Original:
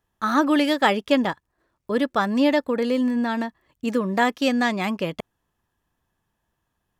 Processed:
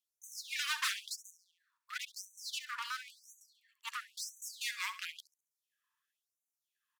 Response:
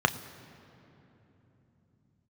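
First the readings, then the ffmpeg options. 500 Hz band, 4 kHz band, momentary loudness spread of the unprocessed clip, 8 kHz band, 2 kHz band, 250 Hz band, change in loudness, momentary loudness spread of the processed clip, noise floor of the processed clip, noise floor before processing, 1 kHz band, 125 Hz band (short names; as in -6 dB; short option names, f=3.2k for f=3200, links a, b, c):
under -40 dB, -8.5 dB, 9 LU, +1.0 dB, -13.0 dB, under -40 dB, -17.0 dB, 15 LU, under -85 dBFS, -77 dBFS, -21.0 dB, under -40 dB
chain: -filter_complex "[0:a]aeval=exprs='0.106*(abs(mod(val(0)/0.106+3,4)-2)-1)':c=same,asplit=2[a][b];[b]aecho=0:1:68|136|204|272:0.224|0.0851|0.0323|0.0123[c];[a][c]amix=inputs=2:normalize=0,afftfilt=real='re*gte(b*sr/1024,890*pow(6000/890,0.5+0.5*sin(2*PI*0.97*pts/sr)))':imag='im*gte(b*sr/1024,890*pow(6000/890,0.5+0.5*sin(2*PI*0.97*pts/sr)))':win_size=1024:overlap=0.75,volume=-5.5dB"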